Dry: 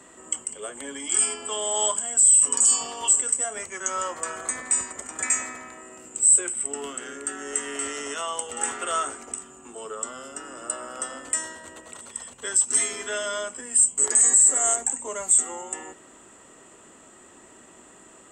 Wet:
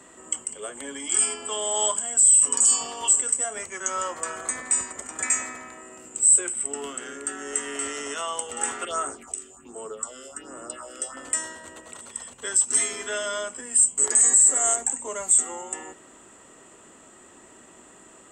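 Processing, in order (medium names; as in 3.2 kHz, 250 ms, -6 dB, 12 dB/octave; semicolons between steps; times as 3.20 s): 8.85–11.17 s: phase shifter stages 4, 1.3 Hz, lowest notch 140–4500 Hz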